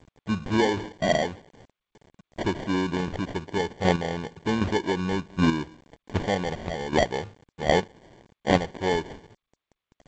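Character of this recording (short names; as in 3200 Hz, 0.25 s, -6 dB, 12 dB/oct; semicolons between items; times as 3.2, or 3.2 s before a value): aliases and images of a low sample rate 1300 Hz, jitter 0%; chopped level 1.3 Hz, depth 60%, duty 15%; a quantiser's noise floor 10-bit, dither none; G.722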